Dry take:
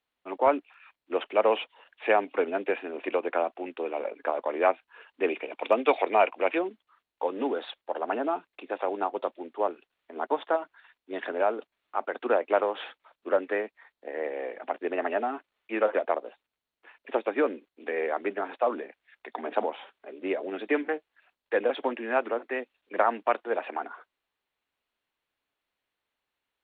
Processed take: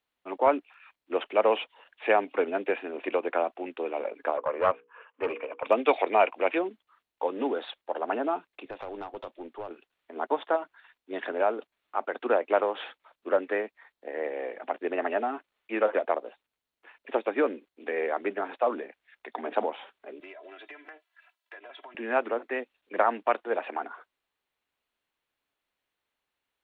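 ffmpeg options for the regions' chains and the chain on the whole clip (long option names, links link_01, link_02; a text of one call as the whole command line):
ffmpeg -i in.wav -filter_complex "[0:a]asettb=1/sr,asplit=3[link_01][link_02][link_03];[link_01]atrim=end=4.374[link_04];[link_02]atrim=start=4.37:end=5.67,asetpts=PTS-STARTPTS,afade=type=in:duration=0.004:curve=qsin,afade=type=out:start_time=1.296:duration=0.004:curve=qsin,bandreject=frequency=60:width_type=h:width=6,bandreject=frequency=120:width_type=h:width=6,bandreject=frequency=180:width_type=h:width=6,bandreject=frequency=240:width_type=h:width=6,bandreject=frequency=300:width_type=h:width=6,bandreject=frequency=360:width_type=h:width=6,bandreject=frequency=420:width_type=h:width=6,bandreject=frequency=480:width_type=h:width=6,aeval=exprs='clip(val(0),-1,0.0398)':channel_layout=same,highpass=190,equalizer=frequency=200:width_type=q:width=4:gain=-7,equalizer=frequency=350:width_type=q:width=4:gain=-8,equalizer=frequency=520:width_type=q:width=4:gain=6,equalizer=frequency=760:width_type=q:width=4:gain=-4,equalizer=frequency=1100:width_type=q:width=4:gain=8,equalizer=frequency=2000:width_type=q:width=4:gain=-4,lowpass=frequency=2600:width=0.5412,lowpass=frequency=2600:width=1.3066[link_05];[link_03]atrim=start=5.666[link_06];[link_04][link_05]acrossfade=duration=0.004:curve1=hsin:curve2=qsin[link_07];[link_07][link_06]acrossfade=duration=0.004:curve1=qsin:curve2=hsin,asettb=1/sr,asplit=3[link_08][link_09][link_10];[link_08]atrim=end=8.654[link_11];[link_09]atrim=start=8.65:end=9.71,asetpts=PTS-STARTPTS,afade=type=in:duration=0.004:curve=qsin,afade=type=out:start_time=1.056:duration=0.004:curve=qsin,acrossover=split=140|3000[link_12][link_13][link_14];[link_13]acompressor=threshold=-33dB:ratio=4:attack=3.2:release=140:knee=2.83:detection=peak[link_15];[link_12][link_15][link_14]amix=inputs=3:normalize=0,aeval=exprs='(tanh(25.1*val(0)+0.25)-tanh(0.25))/25.1':channel_layout=same[link_16];[link_10]atrim=start=9.706[link_17];[link_11][link_16]acrossfade=duration=0.004:curve1=hsin:curve2=qsin[link_18];[link_18][link_17]acrossfade=duration=0.004:curve1=qsin:curve2=hsin,asettb=1/sr,asplit=3[link_19][link_20][link_21];[link_19]atrim=end=20.204[link_22];[link_20]atrim=start=20.2:end=21.95,asetpts=PTS-STARTPTS,afade=type=in:duration=0.004:curve=qsin,afade=type=out:start_time=1.746:duration=0.004:curve=qsin,highpass=750,aecho=1:1:3:0.97,atrim=end_sample=77175,acompressor=threshold=-43dB:ratio=8:attack=3.2:release=140:knee=1:detection=peak[link_23];[link_21]atrim=start=21.946[link_24];[link_22][link_23]acrossfade=duration=0.004:curve1=hsin:curve2=qsin[link_25];[link_25][link_24]acrossfade=duration=0.004:curve1=qsin:curve2=hsin" out.wav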